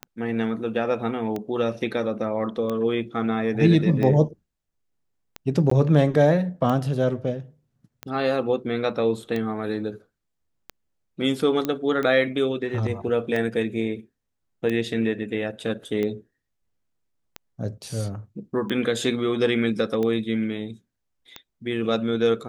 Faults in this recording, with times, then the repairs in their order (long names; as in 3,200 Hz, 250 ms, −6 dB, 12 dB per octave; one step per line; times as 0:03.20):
scratch tick 45 rpm −16 dBFS
0:05.70–0:05.71: drop-out 14 ms
0:11.65: click −12 dBFS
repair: click removal
repair the gap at 0:05.70, 14 ms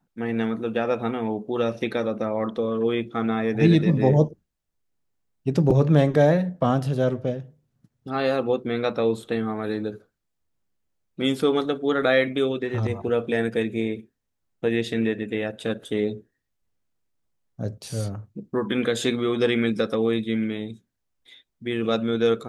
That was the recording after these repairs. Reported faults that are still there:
none of them is left